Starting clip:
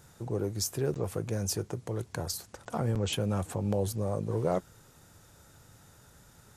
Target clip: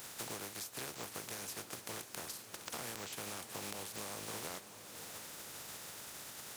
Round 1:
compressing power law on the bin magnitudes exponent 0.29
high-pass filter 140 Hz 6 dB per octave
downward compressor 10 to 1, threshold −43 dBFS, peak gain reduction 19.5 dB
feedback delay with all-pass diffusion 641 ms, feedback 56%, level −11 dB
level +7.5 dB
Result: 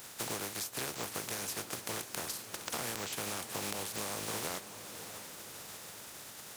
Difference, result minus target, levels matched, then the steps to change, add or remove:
downward compressor: peak gain reduction −6 dB
change: downward compressor 10 to 1, threshold −49.5 dBFS, peak gain reduction 25.5 dB

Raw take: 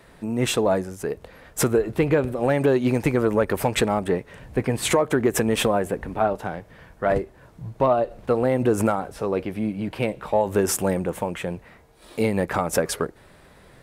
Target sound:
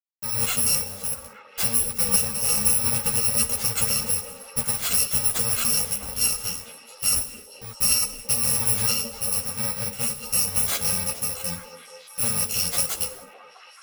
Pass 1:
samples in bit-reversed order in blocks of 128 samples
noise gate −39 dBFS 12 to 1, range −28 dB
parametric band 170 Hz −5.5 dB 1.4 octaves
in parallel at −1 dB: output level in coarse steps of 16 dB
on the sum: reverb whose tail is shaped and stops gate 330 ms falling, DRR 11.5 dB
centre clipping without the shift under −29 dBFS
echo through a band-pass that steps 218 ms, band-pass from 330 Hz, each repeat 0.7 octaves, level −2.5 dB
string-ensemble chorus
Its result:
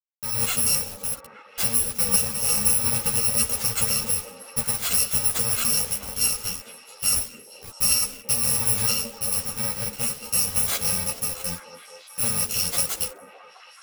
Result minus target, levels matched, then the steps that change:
centre clipping without the shift: distortion +14 dB
change: centre clipping without the shift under −40.5 dBFS

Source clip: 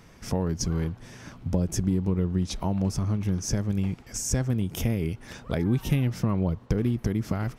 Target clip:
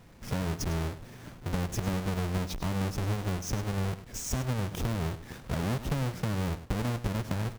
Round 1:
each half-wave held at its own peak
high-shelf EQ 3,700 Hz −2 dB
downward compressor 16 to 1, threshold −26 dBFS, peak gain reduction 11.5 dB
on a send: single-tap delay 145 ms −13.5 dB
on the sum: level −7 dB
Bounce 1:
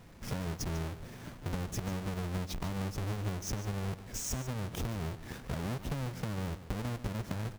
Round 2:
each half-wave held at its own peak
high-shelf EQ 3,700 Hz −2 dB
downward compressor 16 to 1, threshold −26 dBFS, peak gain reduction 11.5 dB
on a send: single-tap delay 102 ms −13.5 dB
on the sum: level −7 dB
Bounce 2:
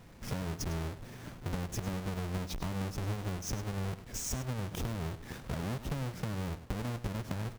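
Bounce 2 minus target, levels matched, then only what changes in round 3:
downward compressor: peak gain reduction +6 dB
change: downward compressor 16 to 1, threshold −19.5 dBFS, peak gain reduction 5 dB

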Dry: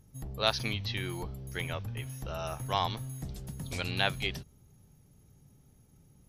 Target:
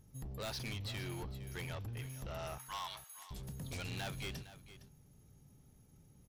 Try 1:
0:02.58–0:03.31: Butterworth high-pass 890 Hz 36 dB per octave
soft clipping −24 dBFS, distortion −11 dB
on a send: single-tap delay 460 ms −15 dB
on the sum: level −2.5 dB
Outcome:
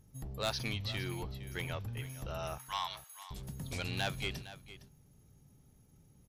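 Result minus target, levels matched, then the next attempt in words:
soft clipping: distortion −6 dB
0:02.58–0:03.31: Butterworth high-pass 890 Hz 36 dB per octave
soft clipping −36 dBFS, distortion −4 dB
on a send: single-tap delay 460 ms −15 dB
on the sum: level −2.5 dB

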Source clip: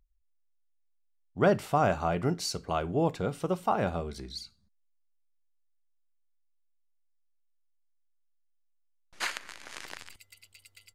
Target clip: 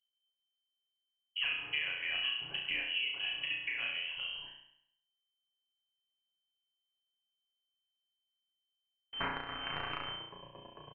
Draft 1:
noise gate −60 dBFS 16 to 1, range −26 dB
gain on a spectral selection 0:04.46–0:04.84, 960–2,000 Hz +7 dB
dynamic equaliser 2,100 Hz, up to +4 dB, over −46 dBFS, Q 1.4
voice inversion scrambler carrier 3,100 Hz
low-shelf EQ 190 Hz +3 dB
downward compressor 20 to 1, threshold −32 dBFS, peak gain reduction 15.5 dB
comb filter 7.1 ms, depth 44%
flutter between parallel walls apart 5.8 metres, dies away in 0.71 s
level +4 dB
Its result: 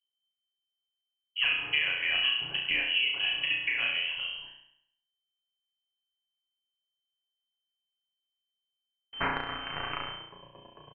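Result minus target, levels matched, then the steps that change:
downward compressor: peak gain reduction −7.5 dB
change: downward compressor 20 to 1, threshold −40 dBFS, peak gain reduction 23 dB

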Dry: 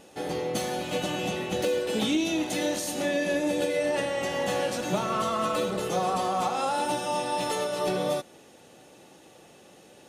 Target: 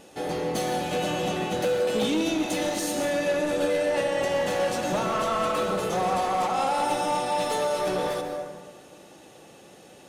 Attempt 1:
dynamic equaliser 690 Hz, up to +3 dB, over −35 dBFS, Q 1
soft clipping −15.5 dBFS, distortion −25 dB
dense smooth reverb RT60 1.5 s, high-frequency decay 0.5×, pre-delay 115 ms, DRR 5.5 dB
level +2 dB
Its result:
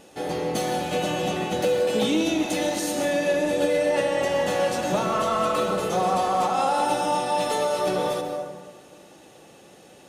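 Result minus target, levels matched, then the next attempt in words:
soft clipping: distortion −11 dB
dynamic equaliser 690 Hz, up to +3 dB, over −35 dBFS, Q 1
soft clipping −23.5 dBFS, distortion −14 dB
dense smooth reverb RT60 1.5 s, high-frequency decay 0.5×, pre-delay 115 ms, DRR 5.5 dB
level +2 dB

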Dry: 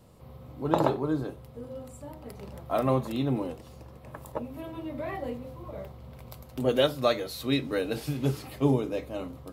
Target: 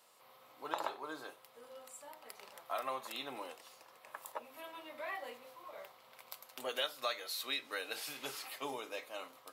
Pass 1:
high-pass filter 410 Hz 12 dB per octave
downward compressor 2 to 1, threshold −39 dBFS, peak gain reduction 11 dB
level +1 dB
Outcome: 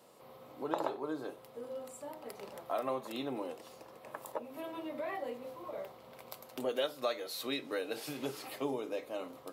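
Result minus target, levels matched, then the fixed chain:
500 Hz band +5.0 dB
high-pass filter 1,100 Hz 12 dB per octave
downward compressor 2 to 1, threshold −39 dBFS, peak gain reduction 8 dB
level +1 dB

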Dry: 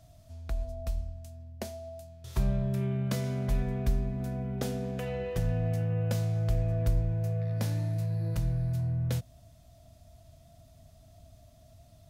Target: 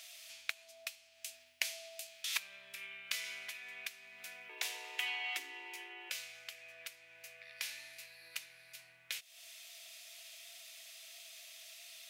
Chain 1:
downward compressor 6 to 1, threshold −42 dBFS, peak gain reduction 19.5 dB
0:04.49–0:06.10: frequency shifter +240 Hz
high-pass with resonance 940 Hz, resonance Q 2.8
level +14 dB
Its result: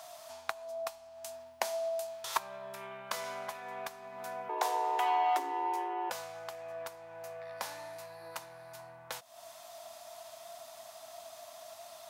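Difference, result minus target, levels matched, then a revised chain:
1,000 Hz band +16.0 dB
downward compressor 6 to 1, threshold −42 dBFS, peak gain reduction 19.5 dB
0:04.49–0:06.10: frequency shifter +240 Hz
high-pass with resonance 2,400 Hz, resonance Q 2.8
level +14 dB

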